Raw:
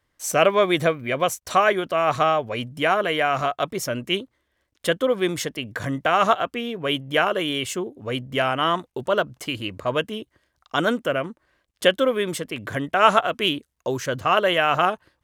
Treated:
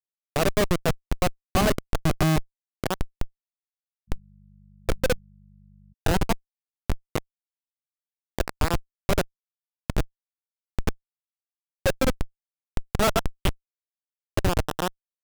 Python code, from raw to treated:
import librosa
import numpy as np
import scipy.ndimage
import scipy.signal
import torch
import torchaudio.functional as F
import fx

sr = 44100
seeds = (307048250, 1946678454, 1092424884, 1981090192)

y = fx.phaser_stages(x, sr, stages=12, low_hz=260.0, high_hz=4900.0, hz=0.14, feedback_pct=15)
y = fx.schmitt(y, sr, flips_db=-15.0)
y = fx.dmg_buzz(y, sr, base_hz=50.0, harmonics=4, level_db=-59.0, tilt_db=-2, odd_only=False, at=(4.07, 5.92), fade=0.02)
y = F.gain(torch.from_numpy(y), 5.5).numpy()